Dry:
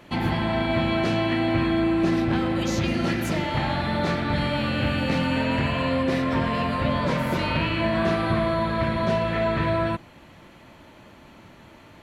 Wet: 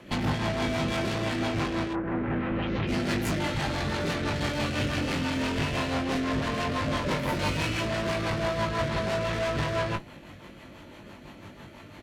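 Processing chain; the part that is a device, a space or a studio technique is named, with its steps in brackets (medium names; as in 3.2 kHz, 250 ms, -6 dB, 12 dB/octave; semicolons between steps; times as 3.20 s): overdriven rotary cabinet (valve stage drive 32 dB, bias 0.7; rotary cabinet horn 6 Hz); 1.92–2.87 s: low-pass 1.6 kHz -> 3.5 kHz 24 dB/octave; doubling 20 ms -6 dB; trim +7 dB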